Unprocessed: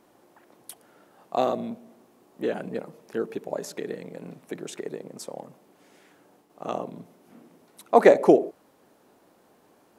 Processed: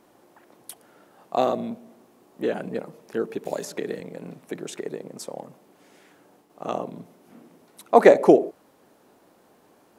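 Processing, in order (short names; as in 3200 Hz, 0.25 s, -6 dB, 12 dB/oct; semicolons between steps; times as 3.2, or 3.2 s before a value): 3.45–4 three-band squash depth 70%; gain +2 dB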